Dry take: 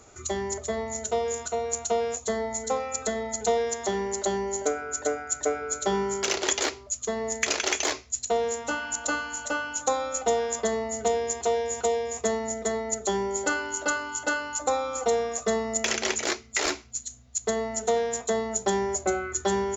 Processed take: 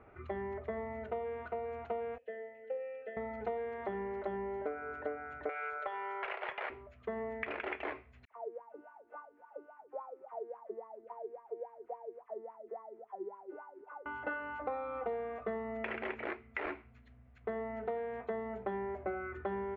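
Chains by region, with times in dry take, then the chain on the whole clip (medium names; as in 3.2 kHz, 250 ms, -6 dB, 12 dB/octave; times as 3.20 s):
2.18–3.17 s: vowel filter e + peaking EQ 3 kHz +13 dB 0.34 oct
5.49–6.70 s: high-pass 570 Hz 24 dB/octave + hard clipper -18.5 dBFS + three bands compressed up and down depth 100%
8.25–14.06 s: CVSD coder 32 kbps + wah-wah 3.6 Hz 340–1100 Hz, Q 15 + phase dispersion lows, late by 63 ms, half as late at 1.5 kHz
whole clip: steep low-pass 2.4 kHz 36 dB/octave; compression 3:1, threshold -32 dBFS; trim -4.5 dB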